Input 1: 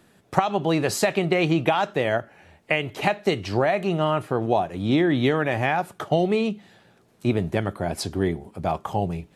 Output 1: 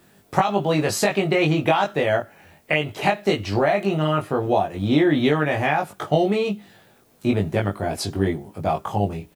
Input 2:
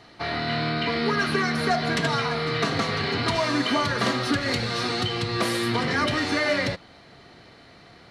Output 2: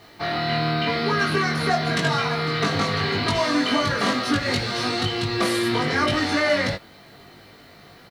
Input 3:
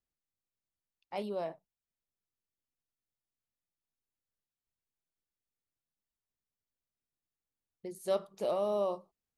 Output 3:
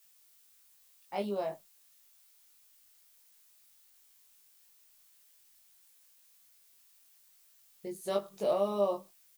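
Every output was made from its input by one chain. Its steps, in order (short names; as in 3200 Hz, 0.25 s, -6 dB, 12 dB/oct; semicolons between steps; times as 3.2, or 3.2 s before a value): added noise blue -66 dBFS; doubler 20 ms -2 dB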